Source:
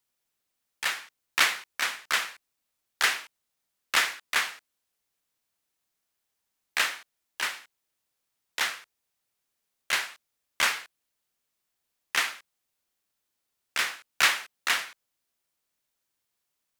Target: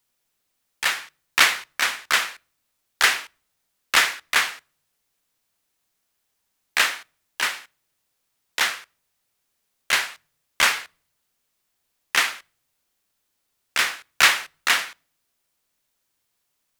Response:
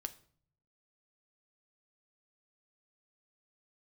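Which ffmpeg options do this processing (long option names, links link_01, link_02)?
-filter_complex "[0:a]asplit=2[link_01][link_02];[1:a]atrim=start_sample=2205,lowshelf=frequency=160:gain=10[link_03];[link_02][link_03]afir=irnorm=-1:irlink=0,volume=-10.5dB[link_04];[link_01][link_04]amix=inputs=2:normalize=0,volume=4.5dB"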